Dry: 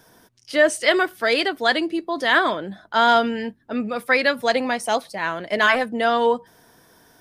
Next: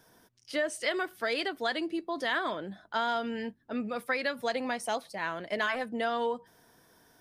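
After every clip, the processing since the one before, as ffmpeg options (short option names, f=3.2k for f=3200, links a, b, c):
-af "acompressor=threshold=-19dB:ratio=4,volume=-8dB"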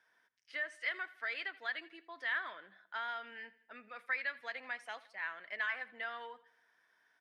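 -af "bandpass=f=1.9k:t=q:w=2.3:csg=0,aecho=1:1:82|164|246|328:0.106|0.0498|0.0234|0.011,volume=-2dB"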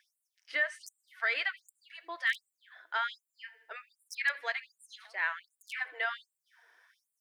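-af "aeval=exprs='0.0447*(abs(mod(val(0)/0.0447+3,4)-2)-1)':c=same,afftfilt=real='re*gte(b*sr/1024,270*pow(7300/270,0.5+0.5*sin(2*PI*1.3*pts/sr)))':imag='im*gte(b*sr/1024,270*pow(7300/270,0.5+0.5*sin(2*PI*1.3*pts/sr)))':win_size=1024:overlap=0.75,volume=8.5dB"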